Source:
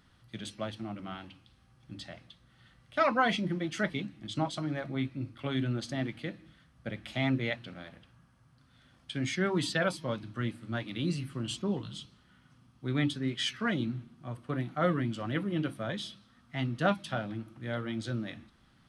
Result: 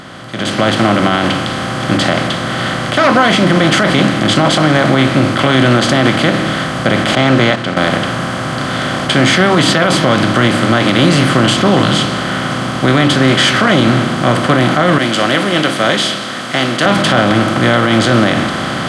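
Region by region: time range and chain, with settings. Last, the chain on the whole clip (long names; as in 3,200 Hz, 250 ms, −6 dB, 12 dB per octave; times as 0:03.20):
0:07.15–0:07.77: Bessel low-pass filter 6,500 Hz, order 8 + noise gate −37 dBFS, range −17 dB
0:14.98–0:16.86: high-pass filter 610 Hz + parametric band 970 Hz −14 dB 2 octaves
whole clip: compressor on every frequency bin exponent 0.4; brickwall limiter −19.5 dBFS; automatic gain control gain up to 16 dB; level +3 dB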